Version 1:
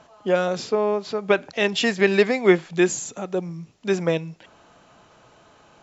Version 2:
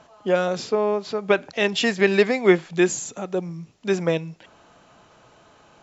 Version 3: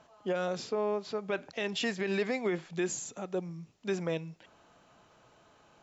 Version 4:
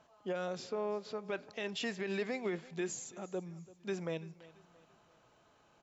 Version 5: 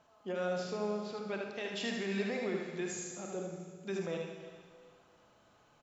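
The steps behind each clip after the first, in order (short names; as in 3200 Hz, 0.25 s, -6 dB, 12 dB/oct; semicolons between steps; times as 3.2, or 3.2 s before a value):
nothing audible
limiter -13.5 dBFS, peak gain reduction 10.5 dB; gain -8.5 dB
feedback echo 0.337 s, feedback 41%, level -20 dB; gain -5.5 dB
echo 76 ms -4.5 dB; Schroeder reverb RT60 1.7 s, combs from 30 ms, DRR 3.5 dB; gain -1.5 dB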